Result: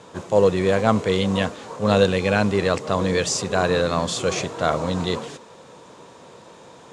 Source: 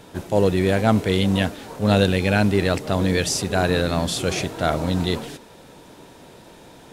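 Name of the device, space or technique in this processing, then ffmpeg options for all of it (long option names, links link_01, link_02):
car door speaker: -af "highpass=98,equalizer=frequency=290:width_type=q:width=4:gain=-4,equalizer=frequency=500:width_type=q:width=4:gain=6,equalizer=frequency=1100:width_type=q:width=4:gain=10,equalizer=frequency=6900:width_type=q:width=4:gain=5,lowpass=frequency=8700:width=0.5412,lowpass=frequency=8700:width=1.3066,volume=-1.5dB"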